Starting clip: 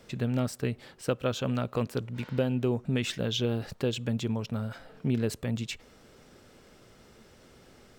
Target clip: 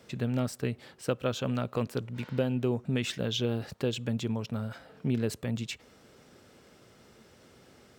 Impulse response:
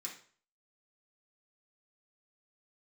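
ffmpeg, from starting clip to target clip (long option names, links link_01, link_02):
-af "highpass=69,volume=-1dB"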